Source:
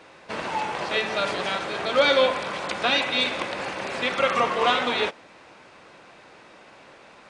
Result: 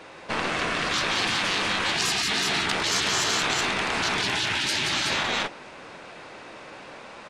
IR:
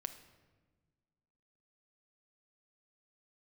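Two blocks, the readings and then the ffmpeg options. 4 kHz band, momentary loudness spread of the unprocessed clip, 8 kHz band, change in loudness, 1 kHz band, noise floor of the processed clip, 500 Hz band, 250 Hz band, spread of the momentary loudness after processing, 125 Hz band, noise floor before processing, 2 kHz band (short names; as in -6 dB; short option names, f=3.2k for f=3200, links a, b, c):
+3.0 dB, 10 LU, +14.0 dB, 0.0 dB, -3.0 dB, -44 dBFS, -9.0 dB, +0.5 dB, 20 LU, +6.0 dB, -50 dBFS, +1.5 dB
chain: -af "aeval=exprs='0.473*(cos(1*acos(clip(val(0)/0.473,-1,1)))-cos(1*PI/2))+0.211*(cos(2*acos(clip(val(0)/0.473,-1,1)))-cos(2*PI/2))+0.211*(cos(4*acos(clip(val(0)/0.473,-1,1)))-cos(4*PI/2))':c=same,aecho=1:1:175|373:0.501|0.596,afftfilt=real='re*lt(hypot(re,im),0.126)':imag='im*lt(hypot(re,im),0.126)':win_size=1024:overlap=0.75,volume=4.5dB"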